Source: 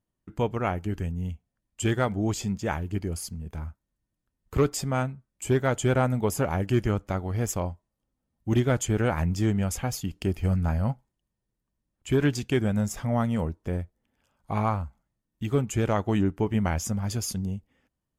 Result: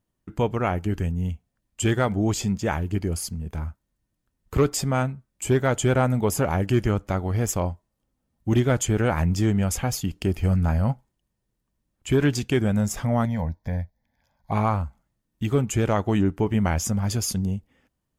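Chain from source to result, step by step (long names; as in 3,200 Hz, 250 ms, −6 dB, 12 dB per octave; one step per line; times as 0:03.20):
in parallel at −2.5 dB: brickwall limiter −21 dBFS, peak gain reduction 8.5 dB
0:13.25–0:14.52: on the sum: phaser with its sweep stopped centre 1,900 Hz, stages 8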